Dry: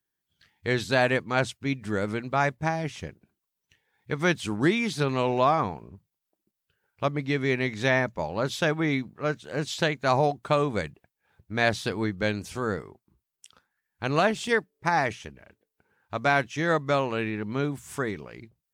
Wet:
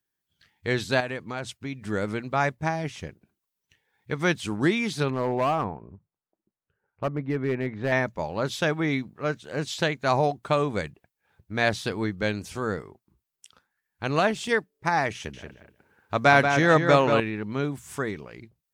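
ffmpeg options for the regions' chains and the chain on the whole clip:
-filter_complex "[0:a]asettb=1/sr,asplit=3[a][b][c];[a]atrim=end=1.004[d];[b]atrim=start=1:end=1.8,asetpts=PTS-STARTPTS,afade=t=in:d=0.004:c=qsin,afade=t=out:st=0.796:d=0.004:c=qsin,acompressor=threshold=-30dB:ratio=3:attack=3.2:release=140:knee=1:detection=peak,asoftclip=type=hard:threshold=-21.5dB[e];[c]atrim=start=1.796[f];[d][e]acrossfade=d=0.004:c1=hsin:c2=qsin[g];[g][f]acrossfade=d=0.004:c1=qsin:c2=hsin,asettb=1/sr,asplit=3[h][i][j];[h]atrim=end=5.104[k];[i]atrim=start=5.1:end=7.92,asetpts=PTS-STARTPTS,afade=t=in:d=0.004:c=qsin,afade=t=out:st=2.816:d=0.004:c=qsin,lowpass=1.4k,asoftclip=type=hard:threshold=-19.5dB[l];[j]atrim=start=7.916[m];[k][l]acrossfade=d=0.004:c1=hsin:c2=qsin[n];[n][m]acrossfade=d=0.004:c1=qsin:c2=hsin,asettb=1/sr,asplit=3[o][p][q];[o]atrim=end=15.154[r];[p]atrim=start=15.15:end=17.2,asetpts=PTS-STARTPTS,afade=t=in:d=0.004:c=qsin,afade=t=out:st=2.046:d=0.004:c=qsin,highpass=48,acontrast=36,asplit=2[s][t];[t]adelay=184,lowpass=f=3.6k:p=1,volume=-6dB,asplit=2[u][v];[v]adelay=184,lowpass=f=3.6k:p=1,volume=0.19,asplit=2[w][x];[x]adelay=184,lowpass=f=3.6k:p=1,volume=0.19[y];[s][u][w][y]amix=inputs=4:normalize=0,atrim=end_sample=90405[z];[q]atrim=start=17.196[aa];[r][z]acrossfade=d=0.004:c1=hsin:c2=qsin[ab];[ab][aa]acrossfade=d=0.004:c1=qsin:c2=hsin"

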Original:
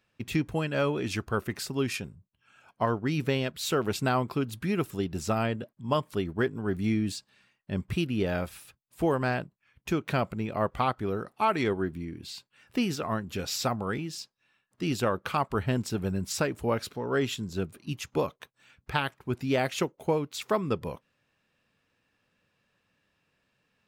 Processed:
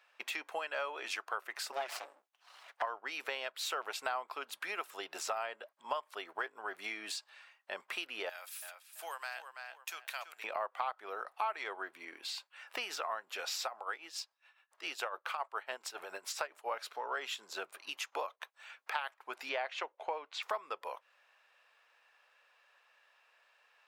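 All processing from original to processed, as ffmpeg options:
-filter_complex "[0:a]asettb=1/sr,asplit=3[a][b][c];[a]atrim=end=1.724[d];[b]atrim=start=1.72:end=2.82,asetpts=PTS-STARTPTS,afade=t=in:d=0.004:c=qsin,afade=t=out:st=1.096:d=0.004:c=qsin,highpass=f=45:p=1,aecho=1:1:7.1:0.58,atrim=end_sample=48510,aeval=exprs='abs(val(0))':c=same[e];[c]atrim=start=2.816[f];[d][e]acrossfade=d=0.004:c1=hsin:c2=qsin[g];[g][f]acrossfade=d=0.004:c1=qsin:c2=hsin,asettb=1/sr,asplit=3[h][i][j];[h]atrim=end=8.294[k];[i]atrim=start=8.29:end=10.44,asetpts=PTS-STARTPTS,afade=t=in:d=0.004:c=qsin,afade=t=out:st=2.146:d=0.004:c=qsin,aderivative,asplit=2[l][m];[m]adelay=333,lowpass=f=4.6k:p=1,volume=-9dB,asplit=2[n][o];[o]adelay=333,lowpass=f=4.6k:p=1,volume=0.31,asplit=2[p][q];[q]adelay=333,lowpass=f=4.6k:p=1,volume=0.31,asplit=2[r][s];[s]adelay=333,lowpass=f=4.6k:p=1,volume=0.31[t];[l][n][p][r][t]amix=inputs=5:normalize=0,atrim=end_sample=94815[u];[j]atrim=start=10.436[v];[k][u]acrossfade=d=0.004:c1=hsin:c2=qsin[w];[w][v]acrossfade=d=0.004:c1=qsin:c2=hsin,asettb=1/sr,asplit=3[x][y][z];[x]atrim=end=13.644[aa];[y]atrim=start=13.64:end=16.71,asetpts=PTS-STARTPTS,afade=t=in:d=0.004:c=qsin,afade=t=out:st=3.066:d=0.004:c=qsin,equalizer=f=200:t=o:w=0.26:g=-9,tremolo=f=7.2:d=0.75[ab];[z]atrim=start=16.706[ac];[aa][ab]acrossfade=d=0.004:c1=hsin:c2=qsin[ad];[ad][ac]acrossfade=d=0.004:c1=qsin:c2=hsin,asettb=1/sr,asplit=3[ae][af][ag];[ae]atrim=end=19.494[ah];[af]atrim=start=19.49:end=20.43,asetpts=PTS-STARTPTS,afade=t=in:d=0.004:c=qsin,afade=t=out:st=0.936:d=0.004:c=qsin,highpass=160,lowpass=4k,bandreject=f=1.3k:w=15[ai];[ag]atrim=start=20.426[aj];[ah][ai]acrossfade=d=0.004:c1=hsin:c2=qsin[ak];[ak][aj]acrossfade=d=0.004:c1=qsin:c2=hsin,highpass=f=680:w=0.5412,highpass=f=680:w=1.3066,highshelf=f=3.4k:g=-9.5,acompressor=threshold=-49dB:ratio=3,volume=10dB"

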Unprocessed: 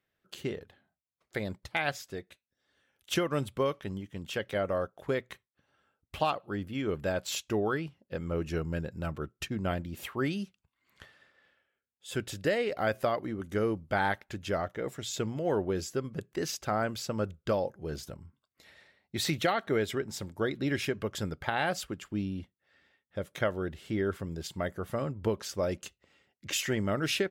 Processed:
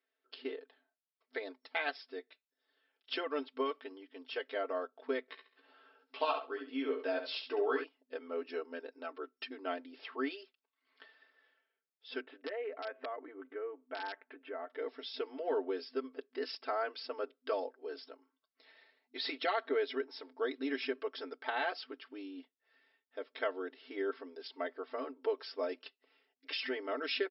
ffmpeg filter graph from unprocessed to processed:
-filter_complex "[0:a]asettb=1/sr,asplit=3[a][b][c];[a]atrim=end=5.284[d];[b]atrim=start=5.28:end=7.84,asetpts=PTS-STARTPTS,afade=t=in:d=0.004:c=qsin,afade=t=out:st=2.556:d=0.004:c=qsin,aecho=1:1:68|136|204:0.398|0.0677|0.0115,atrim=end_sample=112896,acompressor=mode=upward:threshold=-47dB:ratio=2.5:attack=3.2:release=140:knee=2.83:detection=peak,asplit=2[e][f];[f]adelay=15,volume=-5.5dB[g];[e][g]amix=inputs=2:normalize=0,atrim=end_sample=112896[h];[c]atrim=start=7.836[i];[d][h]acrossfade=d=0.004:c1=hsin:c2=qsin[j];[j][i]acrossfade=d=0.004:c1=qsin:c2=hsin,asettb=1/sr,asplit=3[k][l][m];[k]atrim=end=12.214[n];[l]atrim=start=12.21:end=14.7,asetpts=PTS-STARTPTS,afade=t=in:d=0.004:c=qsin,afade=t=out:st=2.486:d=0.004:c=qsin,lowpass=f=2.3k:w=0.5412,lowpass=f=2.3k:w=1.3066,acompressor=threshold=-35dB:ratio=2.5:attack=3.2:release=140:knee=1:detection=peak,aeval=exprs='(mod(20*val(0)+1,2)-1)/20':c=same[o];[m]atrim=start=14.696[p];[n][o]acrossfade=d=0.004:c1=hsin:c2=qsin[q];[q][p]acrossfade=d=0.004:c1=qsin:c2=hsin,afftfilt=real='re*between(b*sr/4096,250,5500)':imag='im*between(b*sr/4096,250,5500)':win_size=4096:overlap=0.75,aecho=1:1:4.5:0.86,volume=-7dB"

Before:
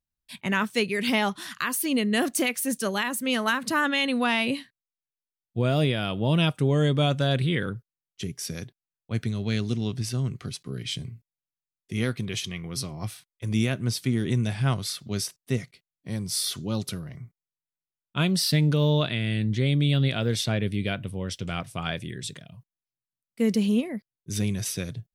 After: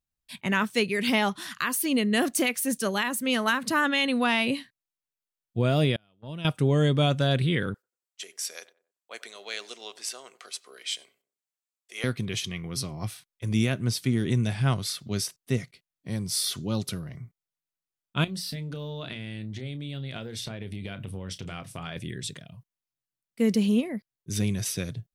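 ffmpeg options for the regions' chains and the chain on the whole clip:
-filter_complex "[0:a]asettb=1/sr,asplit=3[a][b][c];[a]atrim=end=5.964[d];[b]atrim=start=5.96:end=6.45,asetpts=PTS-STARTPTS,afade=t=in:d=0.004:c=qsin,afade=t=out:st=0.486:d=0.004:c=qsin,agate=range=-36dB:threshold=-23dB:ratio=16:release=100:detection=peak,acompressor=threshold=-39dB:ratio=3:attack=3.2:release=140:knee=1:detection=peak[e];[c]atrim=start=6.446[f];[d][e]acrossfade=d=0.004:c1=hsin:c2=qsin[g];[g][f]acrossfade=d=0.004:c1=qsin:c2=hsin,asettb=1/sr,asplit=3[h][i][j];[h]atrim=end=7.744[k];[i]atrim=start=7.74:end=12.04,asetpts=PTS-STARTPTS,afade=t=in:d=0.004:c=qsin,afade=t=out:st=4.296:d=0.004:c=qsin,highpass=f=550:w=0.5412,highpass=f=550:w=1.3066,equalizer=f=7.7k:t=o:w=0.33:g=6,asplit=2[l][m];[m]adelay=93,lowpass=f=1.3k:p=1,volume=-17dB,asplit=2[n][o];[o]adelay=93,lowpass=f=1.3k:p=1,volume=0.38,asplit=2[p][q];[q]adelay=93,lowpass=f=1.3k:p=1,volume=0.38[r];[l][n][p][r]amix=inputs=4:normalize=0,atrim=end_sample=189630[s];[j]atrim=start=12.036[t];[k][s]acrossfade=d=0.004:c1=hsin:c2=qsin[u];[u][t]acrossfade=d=0.004:c1=qsin:c2=hsin,asettb=1/sr,asplit=3[v][w][x];[v]atrim=end=18.244[y];[w]atrim=start=18.24:end=21.96,asetpts=PTS-STARTPTS,afade=t=in:d=0.004:c=qsin,afade=t=out:st=3.716:d=0.004:c=qsin,acompressor=threshold=-31dB:ratio=12:attack=3.2:release=140:knee=1:detection=peak,bandreject=f=60:t=h:w=6,bandreject=f=120:t=h:w=6,bandreject=f=180:t=h:w=6,bandreject=f=240:t=h:w=6,bandreject=f=300:t=h:w=6,asplit=2[z][aa];[aa]adelay=31,volume=-13dB[ab];[z][ab]amix=inputs=2:normalize=0,atrim=end_sample=164052[ac];[x]atrim=start=21.956[ad];[y][ac]acrossfade=d=0.004:c1=hsin:c2=qsin[ae];[ae][ad]acrossfade=d=0.004:c1=qsin:c2=hsin"

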